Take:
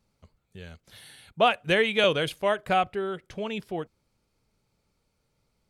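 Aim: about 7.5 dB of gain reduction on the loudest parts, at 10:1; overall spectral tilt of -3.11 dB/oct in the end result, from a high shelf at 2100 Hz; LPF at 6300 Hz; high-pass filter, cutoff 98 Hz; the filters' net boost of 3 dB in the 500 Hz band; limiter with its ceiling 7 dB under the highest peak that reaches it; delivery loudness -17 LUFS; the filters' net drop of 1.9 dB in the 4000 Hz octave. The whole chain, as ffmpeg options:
-af "highpass=98,lowpass=6.3k,equalizer=f=500:t=o:g=3.5,highshelf=f=2.1k:g=4.5,equalizer=f=4k:t=o:g=-7,acompressor=threshold=-22dB:ratio=10,volume=13.5dB,alimiter=limit=-5.5dB:level=0:latency=1"

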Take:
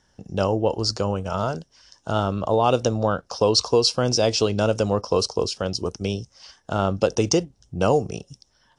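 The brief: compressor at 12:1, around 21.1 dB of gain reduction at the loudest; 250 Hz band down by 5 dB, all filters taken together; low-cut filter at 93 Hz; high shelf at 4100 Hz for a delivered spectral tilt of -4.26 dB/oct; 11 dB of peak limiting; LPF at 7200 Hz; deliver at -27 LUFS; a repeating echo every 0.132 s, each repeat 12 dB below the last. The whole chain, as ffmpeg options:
-af "highpass=93,lowpass=7.2k,equalizer=f=250:t=o:g=-7,highshelf=f=4.1k:g=6.5,acompressor=threshold=-35dB:ratio=12,alimiter=level_in=7dB:limit=-24dB:level=0:latency=1,volume=-7dB,aecho=1:1:132|264|396:0.251|0.0628|0.0157,volume=16dB"

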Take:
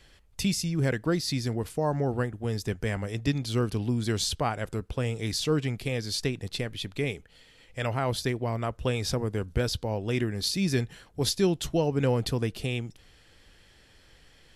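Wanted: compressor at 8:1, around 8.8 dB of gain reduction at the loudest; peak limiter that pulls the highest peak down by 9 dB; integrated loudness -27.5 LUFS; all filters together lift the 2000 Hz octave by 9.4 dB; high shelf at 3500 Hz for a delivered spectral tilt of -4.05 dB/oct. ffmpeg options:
-af "equalizer=f=2k:t=o:g=9,highshelf=f=3.5k:g=8.5,acompressor=threshold=-27dB:ratio=8,volume=6.5dB,alimiter=limit=-17dB:level=0:latency=1"

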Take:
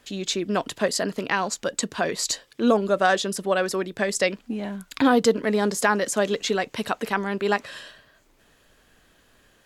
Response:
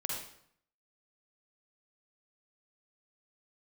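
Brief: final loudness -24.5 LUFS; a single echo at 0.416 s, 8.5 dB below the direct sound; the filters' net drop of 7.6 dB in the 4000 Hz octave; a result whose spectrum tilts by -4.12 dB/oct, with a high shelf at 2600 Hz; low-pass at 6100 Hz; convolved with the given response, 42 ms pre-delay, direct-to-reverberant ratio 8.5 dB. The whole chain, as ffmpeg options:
-filter_complex "[0:a]lowpass=6.1k,highshelf=f=2.6k:g=-6.5,equalizer=f=4k:t=o:g=-3,aecho=1:1:416:0.376,asplit=2[a][b];[1:a]atrim=start_sample=2205,adelay=42[c];[b][c]afir=irnorm=-1:irlink=0,volume=-11.5dB[d];[a][d]amix=inputs=2:normalize=0"

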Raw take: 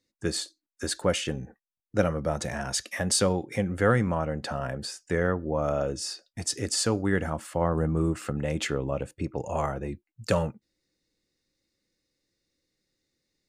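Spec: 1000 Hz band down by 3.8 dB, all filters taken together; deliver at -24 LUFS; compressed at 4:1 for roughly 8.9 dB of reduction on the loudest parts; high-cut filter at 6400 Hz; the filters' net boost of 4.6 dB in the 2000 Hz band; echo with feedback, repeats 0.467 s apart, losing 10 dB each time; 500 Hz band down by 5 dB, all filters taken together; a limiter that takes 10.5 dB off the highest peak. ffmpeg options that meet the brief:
-af "lowpass=6.4k,equalizer=f=500:t=o:g=-4.5,equalizer=f=1k:t=o:g=-7,equalizer=f=2k:t=o:g=8.5,acompressor=threshold=-29dB:ratio=4,alimiter=level_in=1dB:limit=-24dB:level=0:latency=1,volume=-1dB,aecho=1:1:467|934|1401|1868:0.316|0.101|0.0324|0.0104,volume=12.5dB"

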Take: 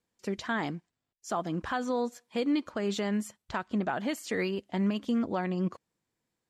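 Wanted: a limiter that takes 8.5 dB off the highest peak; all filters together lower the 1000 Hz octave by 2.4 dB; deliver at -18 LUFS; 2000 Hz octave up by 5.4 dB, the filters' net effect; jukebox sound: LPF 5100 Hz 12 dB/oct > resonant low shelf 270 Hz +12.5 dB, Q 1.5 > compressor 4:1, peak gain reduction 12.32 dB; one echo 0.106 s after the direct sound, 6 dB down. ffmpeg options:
-af "equalizer=f=1k:t=o:g=-4,equalizer=f=2k:t=o:g=8.5,alimiter=level_in=1dB:limit=-24dB:level=0:latency=1,volume=-1dB,lowpass=5.1k,lowshelf=f=270:t=q:w=1.5:g=12.5,aecho=1:1:106:0.501,acompressor=threshold=-29dB:ratio=4,volume=14.5dB"

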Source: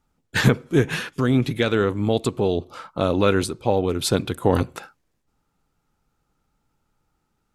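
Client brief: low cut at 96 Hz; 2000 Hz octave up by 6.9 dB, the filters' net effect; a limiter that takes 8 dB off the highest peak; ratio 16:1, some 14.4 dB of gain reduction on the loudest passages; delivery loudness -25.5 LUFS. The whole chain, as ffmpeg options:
-af "highpass=96,equalizer=f=2k:t=o:g=9,acompressor=threshold=-25dB:ratio=16,volume=7.5dB,alimiter=limit=-12.5dB:level=0:latency=1"

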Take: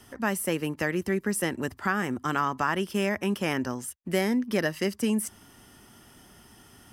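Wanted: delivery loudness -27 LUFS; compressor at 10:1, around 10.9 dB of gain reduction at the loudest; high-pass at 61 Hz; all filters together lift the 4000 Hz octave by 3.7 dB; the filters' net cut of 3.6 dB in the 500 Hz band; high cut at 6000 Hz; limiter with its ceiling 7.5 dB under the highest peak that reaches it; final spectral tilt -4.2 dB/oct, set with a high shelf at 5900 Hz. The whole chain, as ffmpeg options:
-af "highpass=61,lowpass=6k,equalizer=f=500:t=o:g=-5,equalizer=f=4k:t=o:g=5.5,highshelf=f=5.9k:g=3.5,acompressor=threshold=-34dB:ratio=10,volume=13.5dB,alimiter=limit=-15dB:level=0:latency=1"

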